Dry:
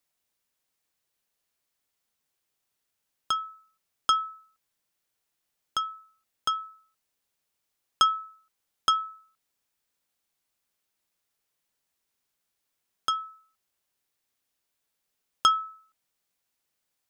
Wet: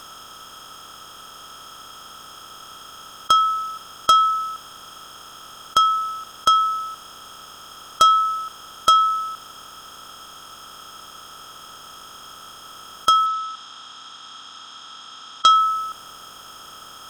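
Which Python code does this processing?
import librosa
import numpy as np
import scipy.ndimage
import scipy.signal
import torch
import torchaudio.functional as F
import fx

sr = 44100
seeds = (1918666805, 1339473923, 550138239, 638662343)

y = fx.bin_compress(x, sr, power=0.4)
y = fx.fold_sine(y, sr, drive_db=5, ceiling_db=-5.0)
y = fx.cabinet(y, sr, low_hz=140.0, low_slope=12, high_hz=7300.0, hz=(160.0, 380.0, 590.0, 3700.0), db=(-8, -10, -9, 7), at=(13.26, 15.49))
y = F.gain(torch.from_numpy(y), -1.5).numpy()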